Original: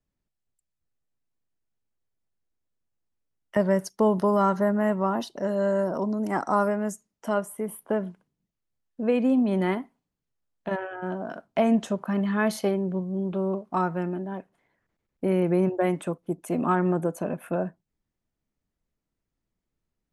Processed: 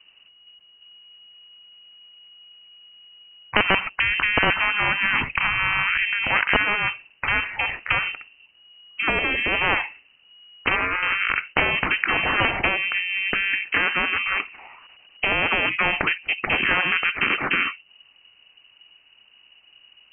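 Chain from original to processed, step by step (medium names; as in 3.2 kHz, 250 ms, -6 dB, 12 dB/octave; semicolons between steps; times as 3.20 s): integer overflow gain 11.5 dB; frequency inversion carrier 2.9 kHz; spectrum-flattening compressor 4:1; trim +8 dB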